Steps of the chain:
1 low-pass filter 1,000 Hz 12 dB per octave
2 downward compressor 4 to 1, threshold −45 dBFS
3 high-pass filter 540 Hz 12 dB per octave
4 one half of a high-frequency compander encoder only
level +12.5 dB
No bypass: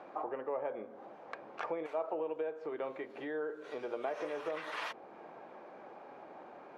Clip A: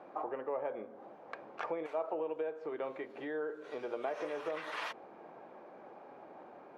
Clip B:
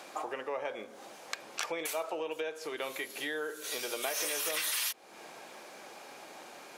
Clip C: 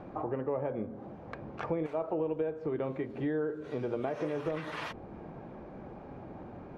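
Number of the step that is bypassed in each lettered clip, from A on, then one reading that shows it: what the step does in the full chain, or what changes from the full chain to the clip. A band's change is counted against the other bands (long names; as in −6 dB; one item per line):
4, change in momentary loudness spread +1 LU
1, 4 kHz band +16.5 dB
3, 125 Hz band +22.0 dB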